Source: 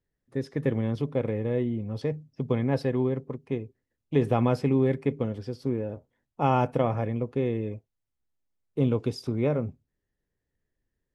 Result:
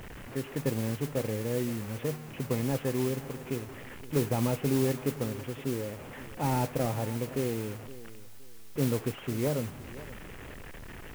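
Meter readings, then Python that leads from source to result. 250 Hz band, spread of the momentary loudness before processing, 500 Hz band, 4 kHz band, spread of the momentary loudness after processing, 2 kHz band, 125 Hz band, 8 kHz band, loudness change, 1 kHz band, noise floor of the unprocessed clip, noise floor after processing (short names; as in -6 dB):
-4.0 dB, 11 LU, -4.5 dB, +3.5 dB, 16 LU, +0.5 dB, -3.5 dB, n/a, -4.0 dB, -6.0 dB, -84 dBFS, -44 dBFS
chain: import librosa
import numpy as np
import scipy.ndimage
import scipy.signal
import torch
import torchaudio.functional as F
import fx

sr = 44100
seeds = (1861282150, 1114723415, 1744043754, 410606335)

p1 = fx.delta_mod(x, sr, bps=16000, step_db=-34.0)
p2 = fx.mod_noise(p1, sr, seeds[0], snr_db=14)
p3 = p2 + fx.echo_feedback(p2, sr, ms=517, feedback_pct=26, wet_db=-17, dry=0)
y = F.gain(torch.from_numpy(p3), -4.0).numpy()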